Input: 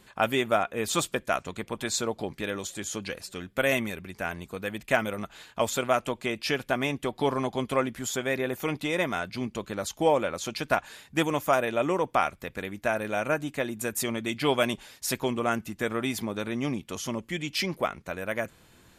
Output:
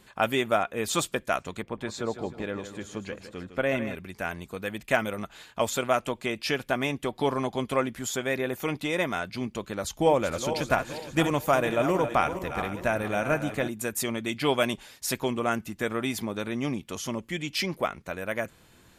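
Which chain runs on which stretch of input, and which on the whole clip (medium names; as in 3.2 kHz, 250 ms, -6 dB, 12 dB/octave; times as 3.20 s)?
1.62–3.95 s: low-pass 1.5 kHz 6 dB/octave + feedback delay 157 ms, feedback 42%, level -10.5 dB
9.84–13.68 s: backward echo that repeats 232 ms, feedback 60%, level -9.5 dB + bass shelf 130 Hz +10 dB
whole clip: none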